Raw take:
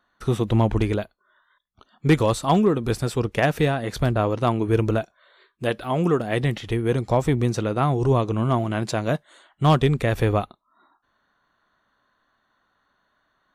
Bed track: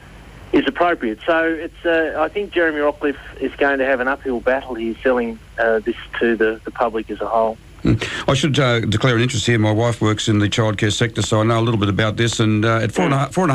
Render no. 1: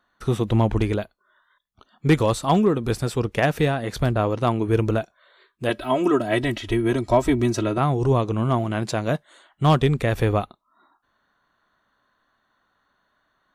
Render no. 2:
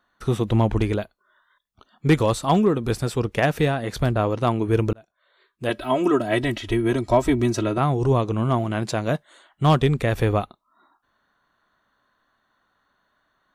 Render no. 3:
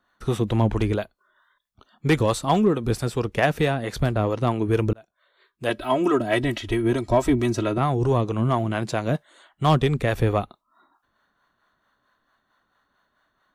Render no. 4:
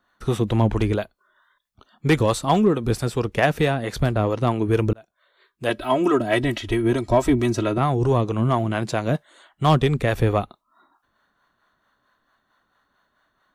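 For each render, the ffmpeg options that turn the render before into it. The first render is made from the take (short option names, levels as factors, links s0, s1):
-filter_complex "[0:a]asettb=1/sr,asplit=3[s0][s1][s2];[s0]atrim=end=5.694[s3];[s1]atrim=start=5.69:end=7.78,asetpts=PTS-STARTPTS,afade=t=in:d=0.004:c=qsin,afade=t=out:st=2.086:d=0.004:c=qsin,aecho=1:1:3.1:0.89,atrim=end_sample=92169[s4];[s2]atrim=start=7.776[s5];[s3][s4]acrossfade=d=0.004:c1=hsin:c2=qsin[s6];[s6][s5]acrossfade=d=0.004:c1=qsin:c2=hsin"
-filter_complex "[0:a]asplit=2[s0][s1];[s0]atrim=end=4.93,asetpts=PTS-STARTPTS,afade=t=out:st=4.926:d=0.004:c=hsin[s2];[s1]atrim=start=4.93,asetpts=PTS-STARTPTS,afade=t=in:d=0.86[s3];[s2][s3]concat=n=2:v=0:a=1"
-filter_complex "[0:a]acrossover=split=430[s0][s1];[s0]aeval=exprs='val(0)*(1-0.5/2+0.5/2*cos(2*PI*4.5*n/s))':c=same[s2];[s1]aeval=exprs='val(0)*(1-0.5/2-0.5/2*cos(2*PI*4.5*n/s))':c=same[s3];[s2][s3]amix=inputs=2:normalize=0,asplit=2[s4][s5];[s5]asoftclip=type=hard:threshold=0.119,volume=0.251[s6];[s4][s6]amix=inputs=2:normalize=0"
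-af "volume=1.19"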